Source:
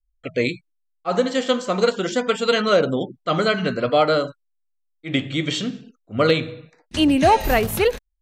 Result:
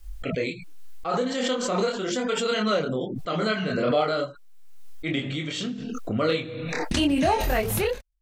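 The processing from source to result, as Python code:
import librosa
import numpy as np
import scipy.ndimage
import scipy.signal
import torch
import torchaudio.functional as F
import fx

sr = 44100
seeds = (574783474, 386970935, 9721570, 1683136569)

y = fx.chorus_voices(x, sr, voices=4, hz=1.2, base_ms=26, depth_ms=3.0, mix_pct=45)
y = fx.pre_swell(y, sr, db_per_s=28.0)
y = F.gain(torch.from_numpy(y), -4.0).numpy()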